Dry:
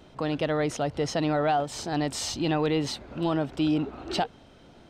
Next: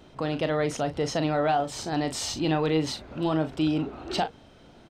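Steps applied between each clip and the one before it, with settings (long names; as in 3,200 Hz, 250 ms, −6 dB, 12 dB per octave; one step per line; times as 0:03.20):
double-tracking delay 38 ms −10 dB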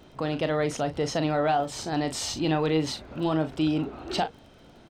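surface crackle 22 per second −45 dBFS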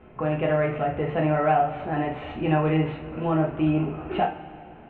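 elliptic low-pass filter 2,600 Hz, stop band 50 dB
coupled-rooms reverb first 0.31 s, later 2.5 s, from −18 dB, DRR −1 dB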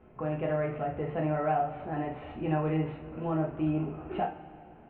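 high-shelf EQ 2,400 Hz −9 dB
level −6.5 dB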